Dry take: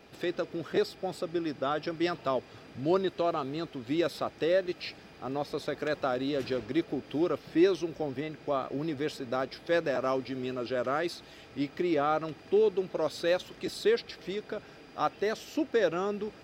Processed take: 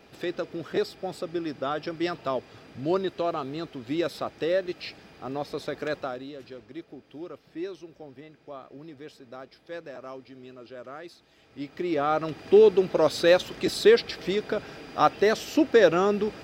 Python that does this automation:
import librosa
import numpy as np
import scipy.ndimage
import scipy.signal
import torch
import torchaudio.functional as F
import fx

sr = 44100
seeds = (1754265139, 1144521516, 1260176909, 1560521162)

y = fx.gain(x, sr, db=fx.line((5.93, 1.0), (6.37, -11.0), (11.29, -11.0), (11.78, -1.0), (12.55, 8.5)))